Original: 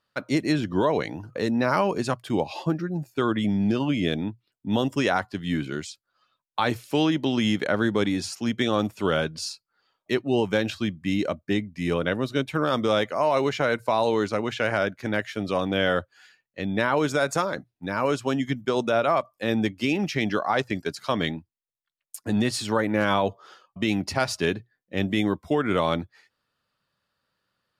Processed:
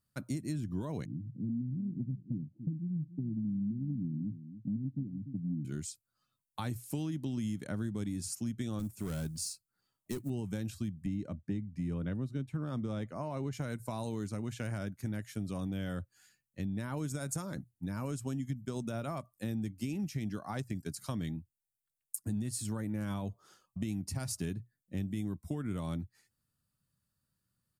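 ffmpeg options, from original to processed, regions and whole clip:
-filter_complex "[0:a]asettb=1/sr,asplit=3[a][b][c];[a]atrim=end=1.054[d];[b]atrim=start=1.05:end=5.65,asetpts=PTS-STARTPTS,afade=t=in:d=0.004:c=qsin,afade=t=out:st=4.596:d=0.004:c=qsin,asuperpass=centerf=180:order=8:qfactor=0.97,aecho=1:1:290:0.141,atrim=end_sample=202860[e];[c]atrim=start=5.646[f];[d][e]acrossfade=d=0.004:c1=hsin:c2=qsin[g];[g][f]acrossfade=d=0.004:c1=qsin:c2=hsin,asettb=1/sr,asplit=3[h][i][j];[h]atrim=end=8.794[k];[i]atrim=start=8.79:end=10.3,asetpts=PTS-STARTPTS,afade=t=in:d=0.004:c=qsin,afade=t=out:st=1.506:d=0.004:c=qsin,volume=21dB,asoftclip=hard,volume=-21dB,acrusher=bits=7:mode=log:mix=0:aa=0.000001[l];[j]atrim=start=10.296[m];[k][l]acrossfade=d=0.004:c1=hsin:c2=qsin[n];[n][m]acrossfade=d=0.004:c1=qsin:c2=hsin,asettb=1/sr,asplit=3[o][p][q];[o]atrim=end=11.064[r];[p]atrim=start=11.06:end=13.53,asetpts=PTS-STARTPTS,afade=t=in:d=0.004:c=qsin,afade=t=out:st=2.466:d=0.004:c=qsin,highpass=f=62:w=0.5412,highpass=f=62:w=1.3066,aemphasis=mode=reproduction:type=75fm,acompressor=mode=upward:threshold=-41dB:ratio=2.5:attack=3.2:release=140:knee=2.83:detection=peak[s];[q]atrim=start=13.526[t];[r][s]acrossfade=d=0.004:c1=hsin:c2=qsin[u];[u][t]acrossfade=d=0.004:c1=qsin:c2=hsin,firequalizer=gain_entry='entry(120,0);entry(460,-19);entry(3300,-19);entry(8300,1)':delay=0.05:min_phase=1,acompressor=threshold=-38dB:ratio=4,volume=4dB"

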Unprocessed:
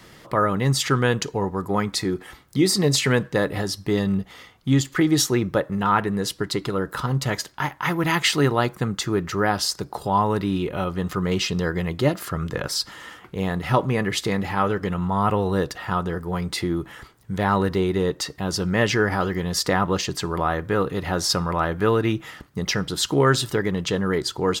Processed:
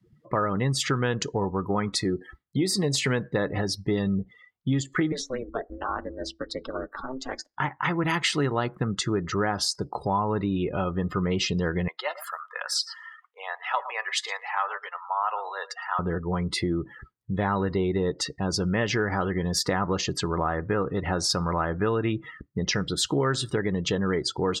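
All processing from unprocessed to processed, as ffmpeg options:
-filter_complex "[0:a]asettb=1/sr,asplit=3[a][b][c];[a]atrim=end=5.124[d];[b]atrim=start=5.12:end=7.54,asetpts=PTS-STARTPTS,afade=t=in:d=0.004:c=qsin,afade=t=out:st=2.416:d=0.004:c=qsin,bandreject=f=50:t=h:w=6,bandreject=f=100:t=h:w=6,bandreject=f=150:t=h:w=6,bandreject=f=200:t=h:w=6,bandreject=f=250:t=h:w=6,aeval=exprs='val(0)*sin(2*PI*130*n/s)':c=same,acrossover=split=400|1100|3700|8000[e][f][g][h][i];[e]acompressor=threshold=-41dB:ratio=3[j];[f]acompressor=threshold=-30dB:ratio=3[k];[g]acompressor=threshold=-40dB:ratio=3[l];[h]acompressor=threshold=-36dB:ratio=3[m];[i]acompressor=threshold=-48dB:ratio=3[n];[j][k][l][m][n]amix=inputs=5:normalize=0[o];[c]atrim=start=7.536[p];[d][o]acrossfade=d=0.004:c1=hsin:c2=qsin[q];[q][p]acrossfade=d=0.004:c1=qsin:c2=hsin,asettb=1/sr,asplit=3[r][s][t];[r]atrim=end=11.884[u];[s]atrim=start=11.88:end=15.99,asetpts=PTS-STARTPTS,afade=t=in:d=0.004:c=qsin,afade=t=out:st=4.106:d=0.004:c=qsin,highpass=f=740:w=0.5412,highpass=f=740:w=1.3066,aecho=1:1:113:0.211,atrim=end_sample=181251[v];[t]atrim=start=15.986[w];[u][v]acrossfade=d=0.004:c1=hsin:c2=qsin[x];[x][w]acrossfade=d=0.004:c1=qsin:c2=hsin,afftdn=nr=34:nf=-36,acompressor=threshold=-22dB:ratio=4"

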